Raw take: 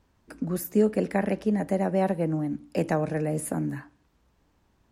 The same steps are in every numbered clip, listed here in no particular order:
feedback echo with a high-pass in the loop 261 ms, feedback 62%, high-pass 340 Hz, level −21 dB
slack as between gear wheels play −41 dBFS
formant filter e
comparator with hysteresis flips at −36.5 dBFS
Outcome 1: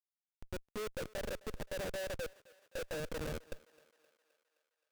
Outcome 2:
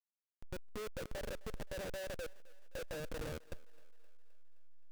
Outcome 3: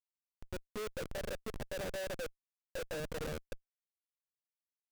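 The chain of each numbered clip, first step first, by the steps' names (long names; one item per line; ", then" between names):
slack as between gear wheels, then formant filter, then comparator with hysteresis, then feedback echo with a high-pass in the loop
formant filter, then comparator with hysteresis, then slack as between gear wheels, then feedback echo with a high-pass in the loop
feedback echo with a high-pass in the loop, then slack as between gear wheels, then formant filter, then comparator with hysteresis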